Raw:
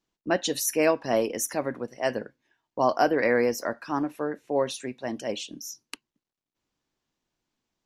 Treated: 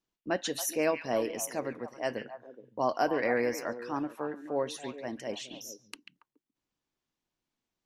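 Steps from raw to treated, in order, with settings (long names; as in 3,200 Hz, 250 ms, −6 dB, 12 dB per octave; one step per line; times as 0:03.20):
echo through a band-pass that steps 140 ms, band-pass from 2,500 Hz, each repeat −1.4 octaves, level −5 dB
level −6 dB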